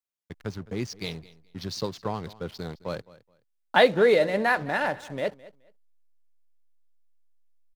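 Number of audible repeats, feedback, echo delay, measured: 2, 21%, 212 ms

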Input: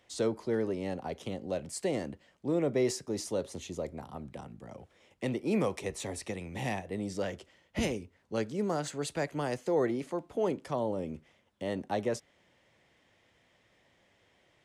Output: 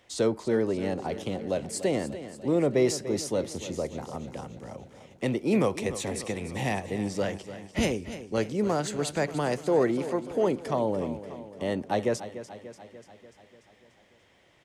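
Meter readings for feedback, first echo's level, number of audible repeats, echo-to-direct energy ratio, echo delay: 60%, −13.0 dB, 5, −11.0 dB, 293 ms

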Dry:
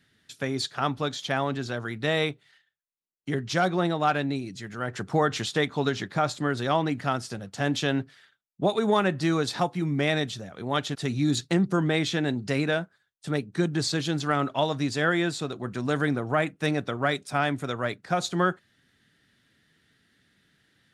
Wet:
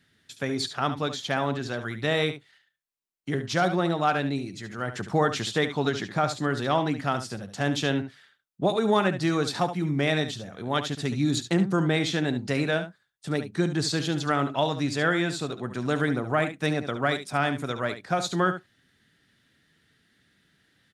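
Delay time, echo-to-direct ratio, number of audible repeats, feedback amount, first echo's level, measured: 71 ms, −10.5 dB, 1, repeats not evenly spaced, −10.5 dB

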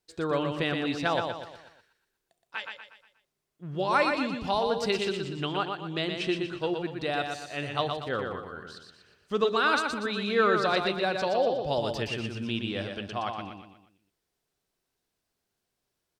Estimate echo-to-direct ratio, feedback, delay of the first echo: −4.0 dB, 43%, 120 ms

